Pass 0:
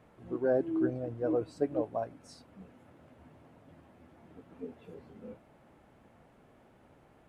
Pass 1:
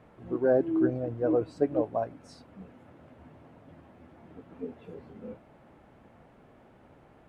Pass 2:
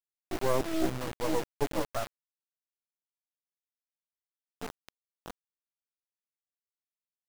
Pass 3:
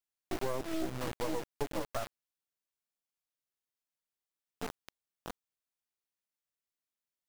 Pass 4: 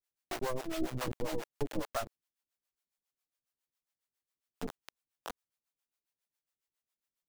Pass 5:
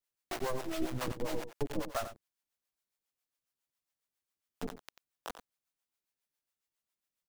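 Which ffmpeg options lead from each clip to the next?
ffmpeg -i in.wav -af "highshelf=frequency=5400:gain=-9.5,volume=4.5dB" out.wav
ffmpeg -i in.wav -af "acrusher=bits=3:dc=4:mix=0:aa=0.000001" out.wav
ffmpeg -i in.wav -af "acompressor=threshold=-31dB:ratio=6,volume=1dB" out.wav
ffmpeg -i in.wav -filter_complex "[0:a]acrossover=split=480[link_01][link_02];[link_01]aeval=exprs='val(0)*(1-1/2+1/2*cos(2*PI*7.3*n/s))':channel_layout=same[link_03];[link_02]aeval=exprs='val(0)*(1-1/2-1/2*cos(2*PI*7.3*n/s))':channel_layout=same[link_04];[link_03][link_04]amix=inputs=2:normalize=0,volume=5dB" out.wav
ffmpeg -i in.wav -af "aecho=1:1:91:0.266" out.wav

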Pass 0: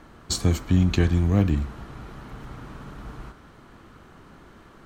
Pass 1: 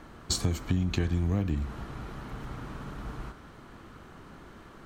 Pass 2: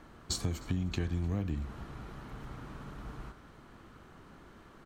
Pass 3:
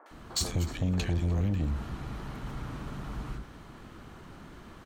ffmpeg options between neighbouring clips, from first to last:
ffmpeg -i in.wav -af "acompressor=threshold=-24dB:ratio=6" out.wav
ffmpeg -i in.wav -af "aecho=1:1:306|612|918:0.0668|0.0314|0.0148,volume=-5.5dB" out.wav
ffmpeg -i in.wav -filter_complex "[0:a]acrossover=split=450|1400[link_01][link_02][link_03];[link_03]adelay=60[link_04];[link_01]adelay=110[link_05];[link_05][link_02][link_04]amix=inputs=3:normalize=0,aeval=exprs='0.106*sin(PI/2*2.24*val(0)/0.106)':channel_layout=same,volume=-3.5dB" out.wav

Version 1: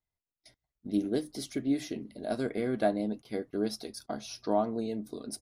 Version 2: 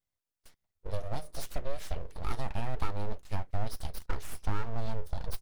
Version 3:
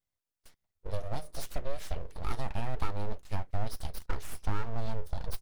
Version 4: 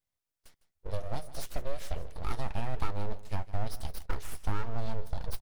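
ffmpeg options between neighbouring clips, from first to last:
ffmpeg -i in.wav -af "acompressor=threshold=-31dB:ratio=6,aeval=exprs='abs(val(0))':channel_layout=same,asubboost=boost=4:cutoff=110,volume=1.5dB" out.wav
ffmpeg -i in.wav -af anull out.wav
ffmpeg -i in.wav -af "aecho=1:1:156:0.141" out.wav

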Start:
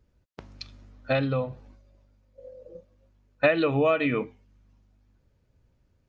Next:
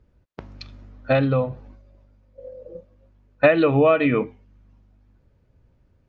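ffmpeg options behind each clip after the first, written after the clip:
ffmpeg -i in.wav -af "lowpass=frequency=2100:poles=1,volume=6.5dB" out.wav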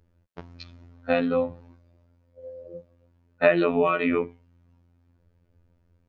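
ffmpeg -i in.wav -af "afftfilt=real='hypot(re,im)*cos(PI*b)':imag='0':win_size=2048:overlap=0.75" out.wav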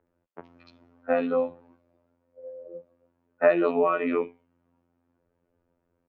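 ffmpeg -i in.wav -filter_complex "[0:a]acrossover=split=230 2300:gain=0.126 1 0.178[link_01][link_02][link_03];[link_01][link_02][link_03]amix=inputs=3:normalize=0,acrossover=split=2700[link_04][link_05];[link_05]adelay=70[link_06];[link_04][link_06]amix=inputs=2:normalize=0" out.wav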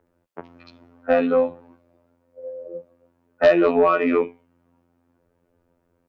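ffmpeg -i in.wav -af "aeval=exprs='0.447*sin(PI/2*1.58*val(0)/0.447)':channel_layout=same,volume=-1dB" out.wav

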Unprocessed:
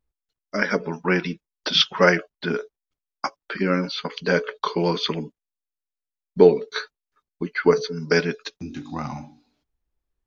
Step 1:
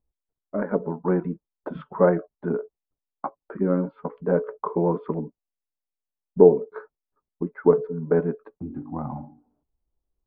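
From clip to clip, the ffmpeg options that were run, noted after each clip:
ffmpeg -i in.wav -af "lowpass=frequency=1000:width=0.5412,lowpass=frequency=1000:width=1.3066" out.wav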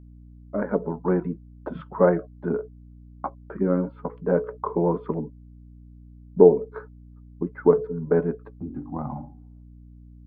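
ffmpeg -i in.wav -af "aeval=exprs='val(0)+0.00562*(sin(2*PI*60*n/s)+sin(2*PI*2*60*n/s)/2+sin(2*PI*3*60*n/s)/3+sin(2*PI*4*60*n/s)/4+sin(2*PI*5*60*n/s)/5)':channel_layout=same" out.wav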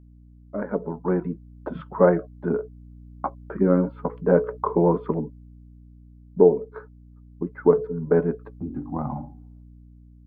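ffmpeg -i in.wav -af "dynaudnorm=framelen=260:gausssize=9:maxgain=11.5dB,volume=-3dB" out.wav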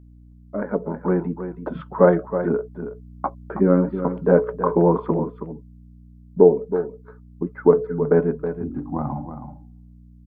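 ffmpeg -i in.wav -af "aecho=1:1:322:0.316,volume=2.5dB" out.wav

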